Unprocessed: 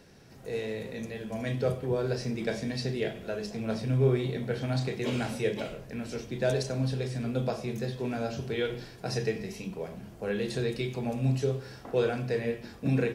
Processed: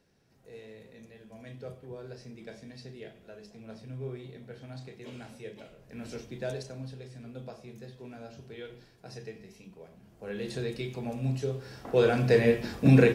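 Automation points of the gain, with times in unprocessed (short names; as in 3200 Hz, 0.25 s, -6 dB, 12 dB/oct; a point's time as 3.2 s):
5.76 s -14 dB
6.06 s -3 dB
6.97 s -13 dB
9.99 s -13 dB
10.47 s -3.5 dB
11.52 s -3.5 dB
12.33 s +8 dB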